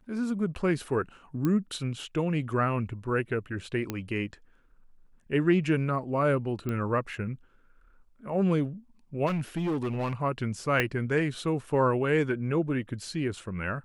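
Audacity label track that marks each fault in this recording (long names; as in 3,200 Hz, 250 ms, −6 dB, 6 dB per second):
1.450000	1.450000	click −16 dBFS
3.900000	3.900000	click −16 dBFS
6.690000	6.690000	click −20 dBFS
9.260000	10.130000	clipping −25.5 dBFS
10.800000	10.800000	click −11 dBFS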